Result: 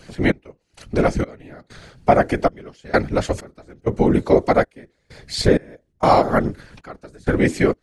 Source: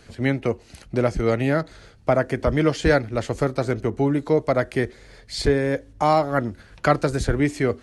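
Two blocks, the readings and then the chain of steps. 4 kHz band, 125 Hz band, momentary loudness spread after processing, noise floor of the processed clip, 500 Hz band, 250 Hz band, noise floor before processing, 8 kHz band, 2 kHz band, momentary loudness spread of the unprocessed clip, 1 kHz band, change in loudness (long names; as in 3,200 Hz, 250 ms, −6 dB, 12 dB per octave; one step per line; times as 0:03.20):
+2.5 dB, −0.5 dB, 13 LU, −67 dBFS, +2.0 dB, +2.0 dB, −50 dBFS, +1.5 dB, +1.0 dB, 8 LU, +4.0 dB, +2.5 dB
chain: gate pattern "xx...xxx...xxx" 97 BPM −24 dB
random phases in short frames
level +4.5 dB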